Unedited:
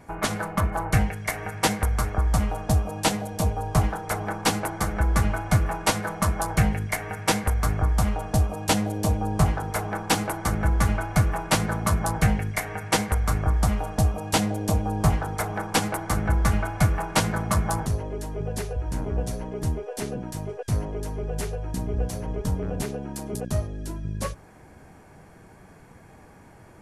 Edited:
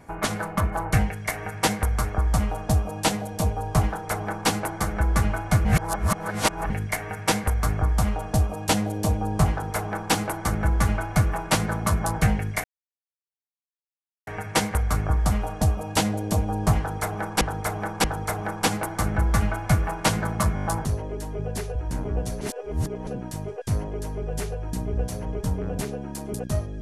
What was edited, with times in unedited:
5.65–6.7 reverse
12.64 insert silence 1.63 s
15.15–15.78 loop, 3 plays
17.66 stutter 0.02 s, 6 plays
19.42–20.08 reverse

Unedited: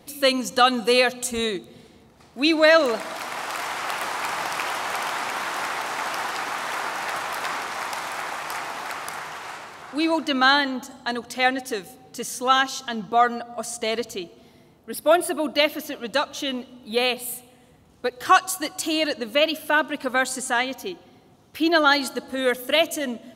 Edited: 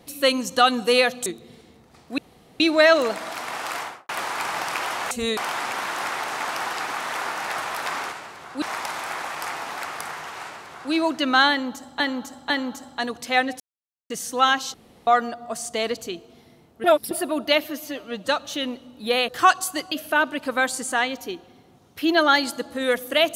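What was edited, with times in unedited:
1.26–1.52 move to 4.95
2.44 insert room tone 0.42 s
3.6–3.93 studio fade out
9.5–10 copy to 7.7
10.58–11.08 loop, 3 plays
11.68–12.18 mute
12.82–13.15 room tone
14.92–15.19 reverse
15.72–16.15 stretch 1.5×
17.15–18.15 cut
18.78–19.49 cut

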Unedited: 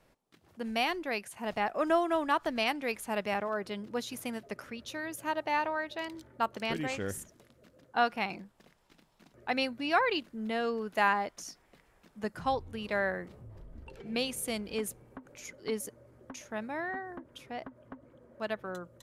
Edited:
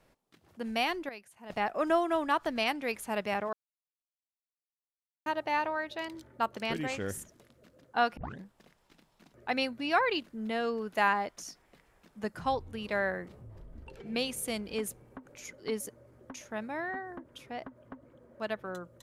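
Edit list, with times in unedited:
1.09–1.5 gain -12 dB
3.53–5.26 mute
8.17 tape start 0.25 s

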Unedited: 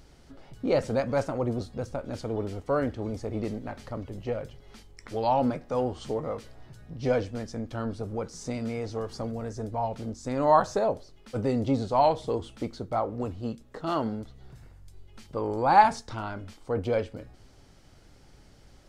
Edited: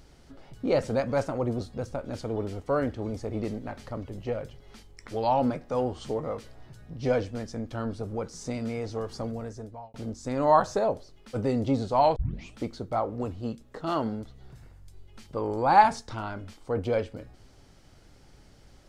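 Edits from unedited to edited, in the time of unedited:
9.32–9.94 fade out
12.16 tape start 0.39 s

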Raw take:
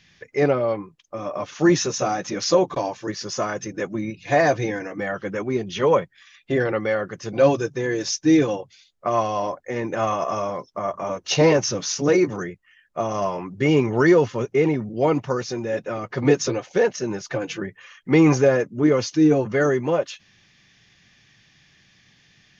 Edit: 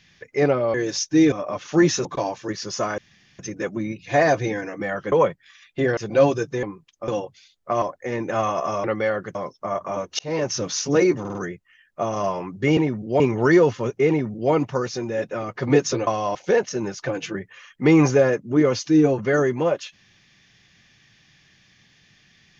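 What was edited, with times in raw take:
0.74–1.19 swap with 7.86–8.44
1.92–2.64 cut
3.57 insert room tone 0.41 s
5.3–5.84 cut
6.69–7.2 move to 10.48
9.18–9.46 move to 16.62
11.32–11.77 fade in
12.33 stutter 0.05 s, 4 plays
14.64–15.07 copy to 13.75

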